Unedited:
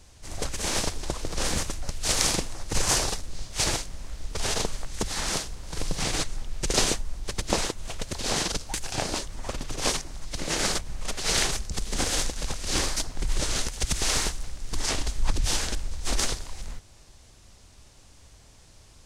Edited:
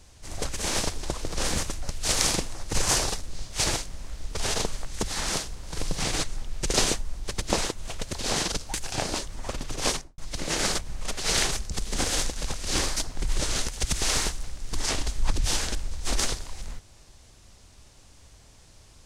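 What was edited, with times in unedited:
0:09.90–0:10.18: fade out and dull

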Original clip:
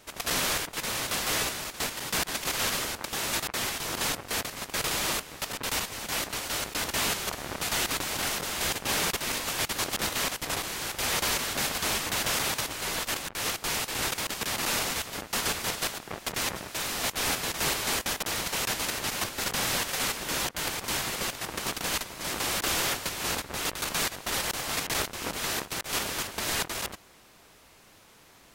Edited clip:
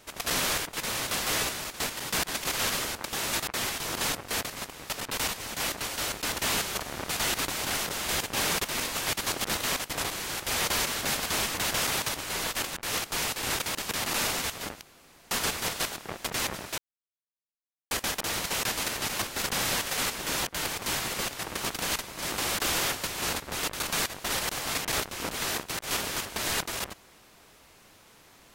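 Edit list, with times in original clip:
0:04.73–0:05.25: remove
0:15.33: splice in room tone 0.50 s
0:16.80–0:17.93: silence

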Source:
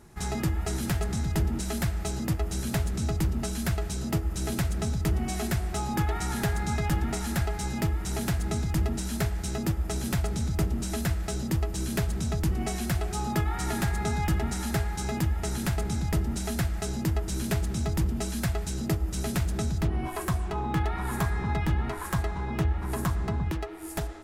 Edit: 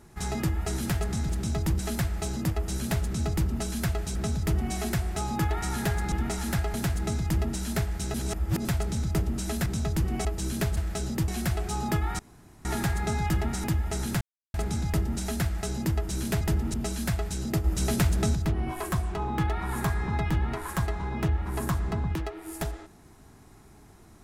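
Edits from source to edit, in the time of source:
0:01.29–0:01.62: swap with 0:17.60–0:18.10
0:03.98–0:04.73: remove
0:06.70–0:06.95: remove
0:07.57–0:08.18: remove
0:09.58–0:10.09: reverse
0:11.10–0:11.61: swap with 0:12.13–0:12.72
0:13.63: splice in room tone 0.46 s
0:14.62–0:15.16: remove
0:15.73: splice in silence 0.33 s
0:19.00–0:19.71: clip gain +4 dB

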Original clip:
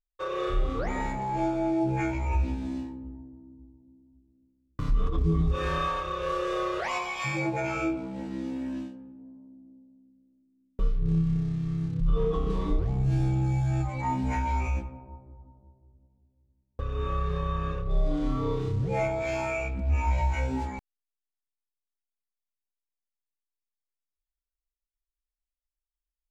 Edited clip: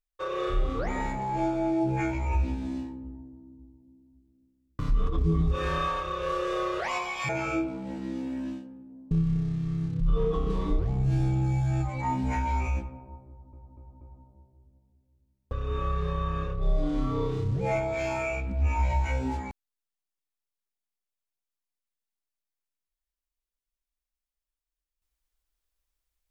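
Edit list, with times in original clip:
0:07.29–0:07.58: remove
0:09.40–0:11.11: remove
0:15.29: stutter 0.24 s, 4 plays

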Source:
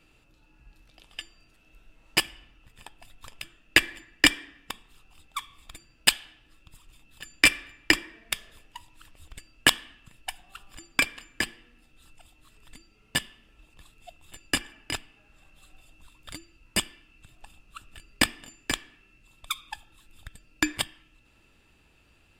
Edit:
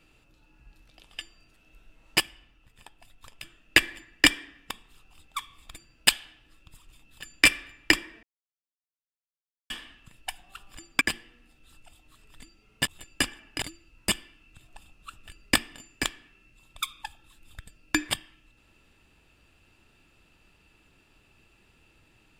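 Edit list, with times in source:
0:02.21–0:03.42: clip gain −4 dB
0:08.23–0:09.70: silence
0:11.01–0:11.34: remove
0:13.20–0:14.20: remove
0:14.95–0:16.30: remove

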